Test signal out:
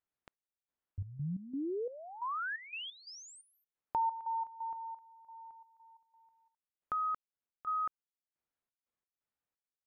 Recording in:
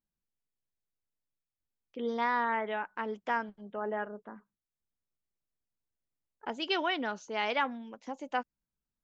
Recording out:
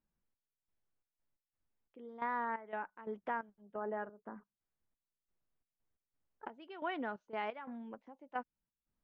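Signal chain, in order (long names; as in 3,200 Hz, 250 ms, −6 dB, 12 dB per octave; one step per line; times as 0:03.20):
low-pass filter 1,800 Hz 12 dB per octave
downward compressor 1.5 to 1, threshold −59 dBFS
gate pattern "xx..xx.x." 88 BPM −12 dB
level +5 dB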